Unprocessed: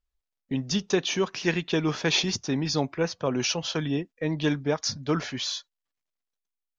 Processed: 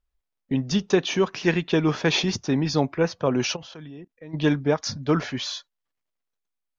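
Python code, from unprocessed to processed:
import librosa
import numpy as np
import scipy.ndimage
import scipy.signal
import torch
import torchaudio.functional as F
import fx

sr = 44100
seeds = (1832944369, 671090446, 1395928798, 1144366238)

y = fx.level_steps(x, sr, step_db=22, at=(3.55, 4.33), fade=0.02)
y = fx.high_shelf(y, sr, hz=3400.0, db=-8.5)
y = y * 10.0 ** (4.5 / 20.0)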